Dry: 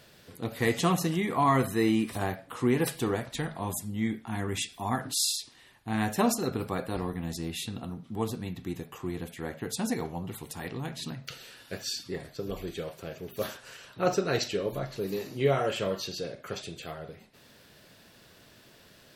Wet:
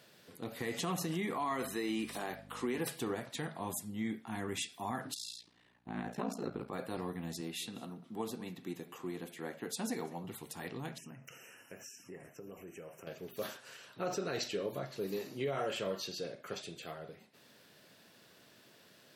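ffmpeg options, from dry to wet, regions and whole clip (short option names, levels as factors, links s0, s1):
-filter_complex "[0:a]asettb=1/sr,asplit=3[s0][s1][s2];[s0]atrim=end=1.374[s3];[s1]atrim=start=1.37:end=2.78,asetpts=PTS-STARTPTS,afade=t=in:d=0.004:c=qsin,afade=t=out:st=1.406:d=0.004:c=qsin,highpass=230,equalizer=f=4400:t=o:w=2.2:g=4,aeval=exprs='val(0)+0.00891*(sin(2*PI*50*n/s)+sin(2*PI*2*50*n/s)/2+sin(2*PI*3*50*n/s)/3+sin(2*PI*4*50*n/s)/4+sin(2*PI*5*50*n/s)/5)':c=same[s4];[s2]atrim=start=2.776[s5];[s3][s4]acrossfade=d=0.004:c1=hsin:c2=qsin[s6];[s6][s5]acrossfade=d=0.004:c1=qsin:c2=hsin,asettb=1/sr,asplit=3[s7][s8][s9];[s7]atrim=end=5.144[s10];[s8]atrim=start=5.14:end=6.73,asetpts=PTS-STARTPTS,afade=t=in:d=0.004:c=qsin,afade=t=out:st=1.586:d=0.004:c=qsin,aeval=exprs='val(0)*sin(2*PI*29*n/s)':c=same,aemphasis=mode=reproduction:type=75kf,aeval=exprs='val(0)+0.000708*(sin(2*PI*60*n/s)+sin(2*PI*2*60*n/s)/2+sin(2*PI*3*60*n/s)/3+sin(2*PI*4*60*n/s)/4+sin(2*PI*5*60*n/s)/5)':c=same[s11];[s9]atrim=start=6.726[s12];[s10][s11]acrossfade=d=0.004:c1=hsin:c2=qsin[s13];[s13][s12]acrossfade=d=0.004:c1=qsin:c2=hsin,asettb=1/sr,asplit=3[s14][s15][s16];[s14]atrim=end=7.414[s17];[s15]atrim=start=7.41:end=10.24,asetpts=PTS-STARTPTS,afade=t=in:d=0.004:c=qsin,afade=t=out:st=2.826:d=0.004:c=qsin,highpass=160,aecho=1:1:196:0.1,atrim=end_sample=124803[s18];[s16]atrim=start=10.236[s19];[s17][s18]acrossfade=d=0.004:c1=hsin:c2=qsin[s20];[s20][s19]acrossfade=d=0.004:c1=qsin:c2=hsin,asettb=1/sr,asplit=3[s21][s22][s23];[s21]atrim=end=10.984[s24];[s22]atrim=start=10.98:end=13.07,asetpts=PTS-STARTPTS,afade=t=in:d=0.004:c=qsin,afade=t=out:st=2.086:d=0.004:c=qsin,acompressor=threshold=0.00891:ratio=3:attack=3.2:release=140:knee=1:detection=peak,asuperstop=centerf=4000:order=20:qfactor=1.8[s25];[s23]atrim=start=13.066[s26];[s24][s25]acrossfade=d=0.004:c1=hsin:c2=qsin[s27];[s27][s26]acrossfade=d=0.004:c1=qsin:c2=hsin,highpass=150,alimiter=limit=0.0794:level=0:latency=1:release=44,volume=0.562"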